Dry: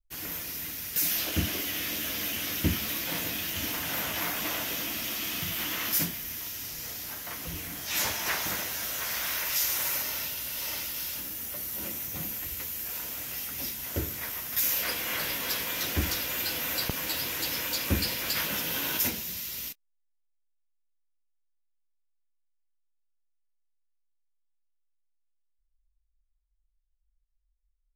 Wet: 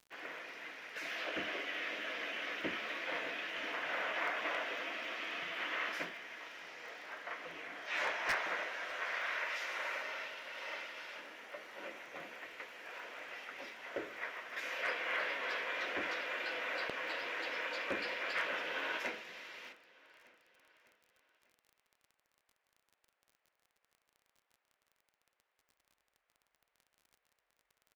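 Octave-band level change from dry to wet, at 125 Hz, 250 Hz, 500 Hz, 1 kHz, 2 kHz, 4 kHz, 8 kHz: under -25 dB, -13.5 dB, -2.0 dB, -2.0 dB, -1.5 dB, -11.5 dB, -25.5 dB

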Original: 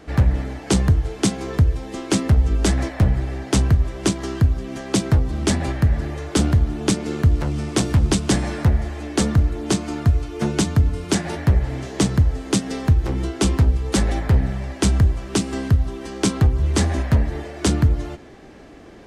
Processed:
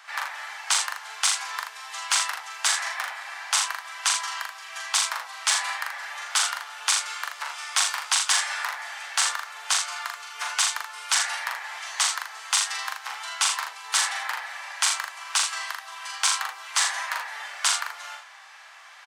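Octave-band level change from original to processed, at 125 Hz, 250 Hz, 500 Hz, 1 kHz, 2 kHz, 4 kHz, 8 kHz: under -40 dB, under -40 dB, -21.5 dB, +2.0 dB, +5.5 dB, +5.0 dB, +5.0 dB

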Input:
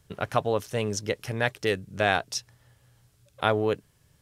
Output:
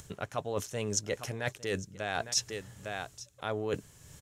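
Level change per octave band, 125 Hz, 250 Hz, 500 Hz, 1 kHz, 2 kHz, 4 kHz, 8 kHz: -6.5 dB, -7.0 dB, -8.0 dB, -9.5 dB, -8.5 dB, -3.0 dB, +3.0 dB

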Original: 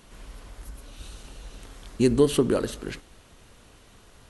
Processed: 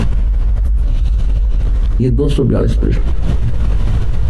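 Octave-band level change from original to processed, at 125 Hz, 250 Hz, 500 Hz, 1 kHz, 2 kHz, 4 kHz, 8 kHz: +21.0 dB, +8.0 dB, +4.5 dB, +7.5 dB, +6.5 dB, +4.0 dB, no reading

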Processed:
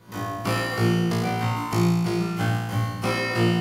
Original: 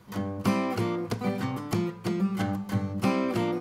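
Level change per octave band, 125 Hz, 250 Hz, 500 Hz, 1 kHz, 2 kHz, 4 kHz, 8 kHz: +8.0 dB, +2.5 dB, +3.0 dB, +5.5 dB, +9.5 dB, +9.0 dB, +7.5 dB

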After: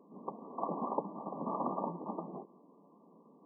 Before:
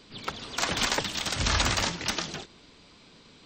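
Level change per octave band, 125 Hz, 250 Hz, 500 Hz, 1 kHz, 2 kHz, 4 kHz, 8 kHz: -15.0 dB, -3.5 dB, -3.0 dB, -4.5 dB, under -40 dB, under -40 dB, under -40 dB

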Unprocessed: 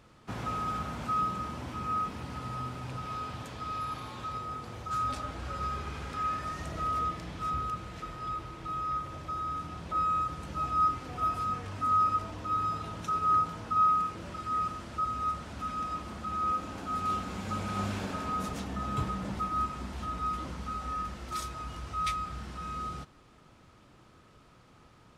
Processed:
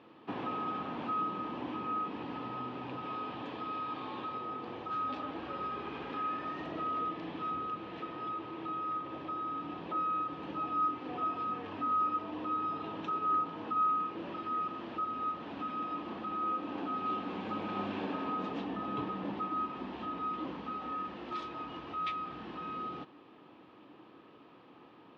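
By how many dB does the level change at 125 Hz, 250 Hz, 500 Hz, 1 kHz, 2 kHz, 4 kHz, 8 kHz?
-11.5 dB, +1.0 dB, +2.0 dB, -4.0 dB, -2.5 dB, -3.5 dB, under -25 dB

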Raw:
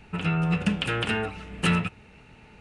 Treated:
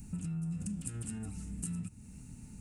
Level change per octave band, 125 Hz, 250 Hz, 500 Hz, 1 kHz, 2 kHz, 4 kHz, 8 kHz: -10.5 dB, -11.5 dB, -26.0 dB, -29.5 dB, -31.0 dB, -29.5 dB, +1.0 dB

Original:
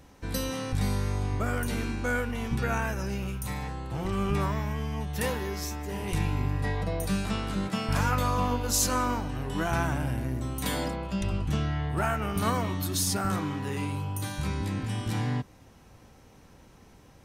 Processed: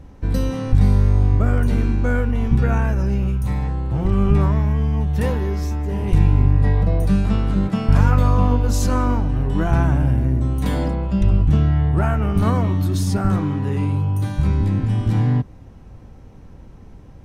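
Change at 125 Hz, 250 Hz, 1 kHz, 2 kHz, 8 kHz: +13.5 dB, +10.0 dB, +3.5 dB, +1.0 dB, -5.0 dB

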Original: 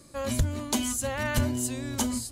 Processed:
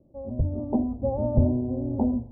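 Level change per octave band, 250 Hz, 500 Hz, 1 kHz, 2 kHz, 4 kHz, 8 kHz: +5.0 dB, +5.0 dB, -2.5 dB, under -40 dB, under -40 dB, under -40 dB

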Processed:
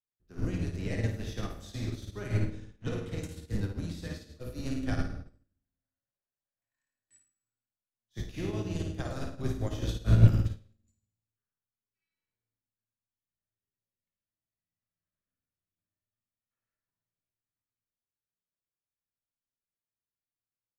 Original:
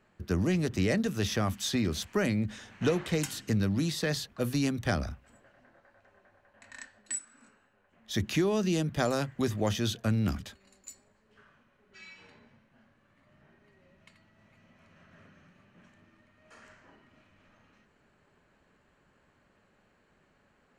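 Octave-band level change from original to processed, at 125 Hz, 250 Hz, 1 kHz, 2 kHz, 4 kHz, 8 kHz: +2.5 dB, -6.5 dB, -8.5 dB, -8.5 dB, -10.5 dB, under -10 dB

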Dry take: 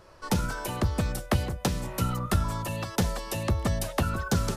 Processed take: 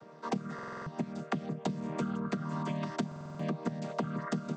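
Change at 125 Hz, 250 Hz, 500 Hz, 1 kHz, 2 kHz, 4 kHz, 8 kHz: -10.5 dB, -3.0 dB, -5.5 dB, -6.0 dB, -9.0 dB, -13.0 dB, -17.5 dB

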